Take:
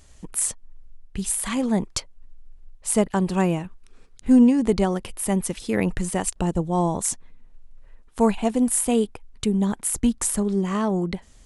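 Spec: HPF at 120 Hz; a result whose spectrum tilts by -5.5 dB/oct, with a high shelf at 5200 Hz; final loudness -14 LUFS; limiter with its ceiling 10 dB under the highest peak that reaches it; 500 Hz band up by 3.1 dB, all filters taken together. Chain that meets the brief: HPF 120 Hz; bell 500 Hz +4 dB; high shelf 5200 Hz -7 dB; gain +12 dB; limiter -3.5 dBFS

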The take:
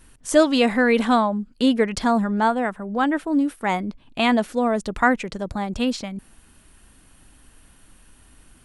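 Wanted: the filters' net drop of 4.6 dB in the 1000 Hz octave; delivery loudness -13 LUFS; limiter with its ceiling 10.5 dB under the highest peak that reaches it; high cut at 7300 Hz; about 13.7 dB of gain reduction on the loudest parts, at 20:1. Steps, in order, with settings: LPF 7300 Hz; bell 1000 Hz -6.5 dB; compressor 20:1, threshold -26 dBFS; gain +21 dB; limiter -4 dBFS

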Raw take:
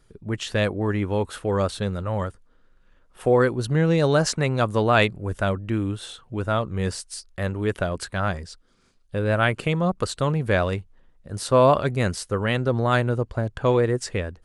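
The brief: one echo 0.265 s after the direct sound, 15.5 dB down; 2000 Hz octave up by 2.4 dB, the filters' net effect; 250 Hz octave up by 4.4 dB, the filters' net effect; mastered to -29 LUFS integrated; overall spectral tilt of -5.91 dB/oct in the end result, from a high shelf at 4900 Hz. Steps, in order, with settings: bell 250 Hz +6 dB; bell 2000 Hz +4 dB; high shelf 4900 Hz -5.5 dB; echo 0.265 s -15.5 dB; gain -7.5 dB

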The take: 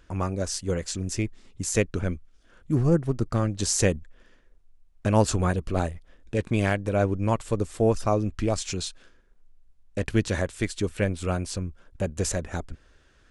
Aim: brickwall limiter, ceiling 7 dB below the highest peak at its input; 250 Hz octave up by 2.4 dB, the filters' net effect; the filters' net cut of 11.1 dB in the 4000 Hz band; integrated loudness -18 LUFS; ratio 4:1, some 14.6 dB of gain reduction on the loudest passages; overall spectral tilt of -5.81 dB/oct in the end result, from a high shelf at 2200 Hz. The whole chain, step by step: bell 250 Hz +3.5 dB; high shelf 2200 Hz -7.5 dB; bell 4000 Hz -7 dB; compressor 4:1, threshold -33 dBFS; gain +21.5 dB; limiter -5 dBFS

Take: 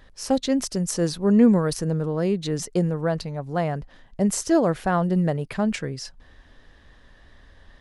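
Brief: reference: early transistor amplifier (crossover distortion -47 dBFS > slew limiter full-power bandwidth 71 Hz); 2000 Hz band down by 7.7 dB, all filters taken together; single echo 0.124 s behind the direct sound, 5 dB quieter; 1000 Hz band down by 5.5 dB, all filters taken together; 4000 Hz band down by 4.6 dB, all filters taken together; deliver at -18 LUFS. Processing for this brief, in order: bell 1000 Hz -7 dB; bell 2000 Hz -6.5 dB; bell 4000 Hz -4.5 dB; echo 0.124 s -5 dB; crossover distortion -47 dBFS; slew limiter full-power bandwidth 71 Hz; gain +5.5 dB

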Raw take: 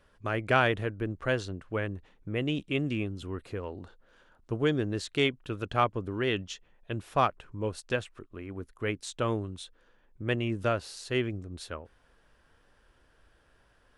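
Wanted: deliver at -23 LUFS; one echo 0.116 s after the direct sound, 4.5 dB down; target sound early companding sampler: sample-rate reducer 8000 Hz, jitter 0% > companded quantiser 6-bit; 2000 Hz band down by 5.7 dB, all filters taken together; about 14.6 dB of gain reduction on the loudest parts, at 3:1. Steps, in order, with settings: bell 2000 Hz -8 dB; compressor 3:1, threshold -42 dBFS; echo 0.116 s -4.5 dB; sample-rate reducer 8000 Hz, jitter 0%; companded quantiser 6-bit; gain +20 dB

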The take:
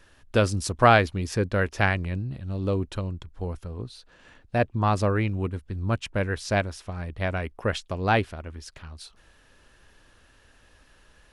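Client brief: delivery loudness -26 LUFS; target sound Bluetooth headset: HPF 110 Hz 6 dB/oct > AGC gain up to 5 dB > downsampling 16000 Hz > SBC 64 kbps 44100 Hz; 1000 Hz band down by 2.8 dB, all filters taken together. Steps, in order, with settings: HPF 110 Hz 6 dB/oct; bell 1000 Hz -4 dB; AGC gain up to 5 dB; downsampling 16000 Hz; gain +2 dB; SBC 64 kbps 44100 Hz

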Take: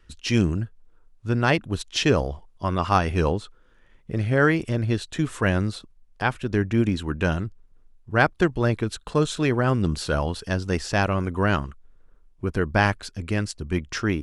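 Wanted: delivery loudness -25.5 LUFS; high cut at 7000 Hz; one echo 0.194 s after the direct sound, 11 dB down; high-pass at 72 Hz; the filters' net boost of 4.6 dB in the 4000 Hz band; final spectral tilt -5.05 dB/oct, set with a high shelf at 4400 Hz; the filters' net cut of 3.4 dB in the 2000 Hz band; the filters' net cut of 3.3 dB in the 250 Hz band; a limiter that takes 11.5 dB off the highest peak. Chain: HPF 72 Hz; LPF 7000 Hz; bell 250 Hz -4.5 dB; bell 2000 Hz -7 dB; bell 4000 Hz +5.5 dB; high shelf 4400 Hz +6 dB; limiter -17 dBFS; echo 0.194 s -11 dB; gain +3 dB

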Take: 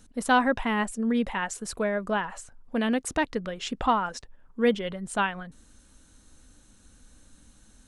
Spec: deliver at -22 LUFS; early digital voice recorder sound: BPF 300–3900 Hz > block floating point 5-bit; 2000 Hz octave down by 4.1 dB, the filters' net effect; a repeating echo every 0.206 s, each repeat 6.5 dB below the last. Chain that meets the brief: BPF 300–3900 Hz; bell 2000 Hz -5.5 dB; feedback echo 0.206 s, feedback 47%, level -6.5 dB; block floating point 5-bit; gain +7.5 dB

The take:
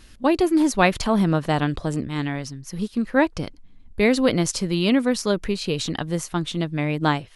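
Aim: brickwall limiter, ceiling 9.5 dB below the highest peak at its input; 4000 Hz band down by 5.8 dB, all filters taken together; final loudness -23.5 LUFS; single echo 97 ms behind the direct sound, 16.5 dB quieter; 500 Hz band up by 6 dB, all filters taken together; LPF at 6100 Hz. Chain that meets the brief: LPF 6100 Hz; bell 500 Hz +7.5 dB; bell 4000 Hz -7 dB; limiter -11 dBFS; echo 97 ms -16.5 dB; gain -1 dB

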